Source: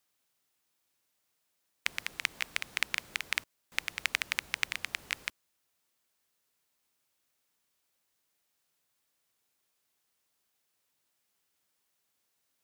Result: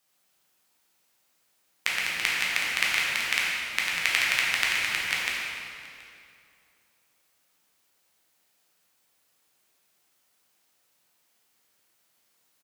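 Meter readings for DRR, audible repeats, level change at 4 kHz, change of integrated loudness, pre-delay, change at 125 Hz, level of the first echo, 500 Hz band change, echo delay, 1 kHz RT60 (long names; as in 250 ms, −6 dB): −5.5 dB, 1, +9.0 dB, +9.0 dB, 9 ms, +7.5 dB, −21.0 dB, +9.5 dB, 726 ms, 2.4 s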